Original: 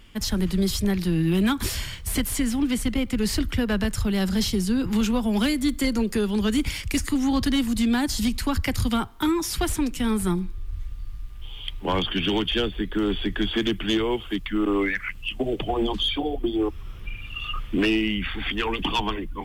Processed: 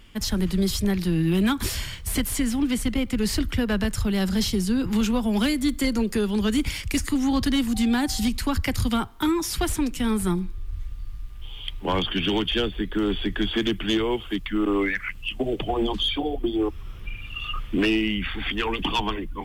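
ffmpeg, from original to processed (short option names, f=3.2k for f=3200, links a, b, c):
-filter_complex "[0:a]asettb=1/sr,asplit=3[a][b][c];[a]atrim=end=7.744[d];[b]atrim=start=7.74:end=8.28,asetpts=PTS-STARTPTS,afade=t=in:d=0.004:c=qsin,afade=t=out:st=0.536:d=0.004:c=qsin,aeval=exprs='val(0)+0.00794*sin(2*PI*770*n/s)':c=same[e];[c]atrim=start=8.276[f];[d][e]acrossfade=d=0.004:c1=hsin:c2=qsin[g];[g][f]acrossfade=d=0.004:c1=qsin:c2=hsin"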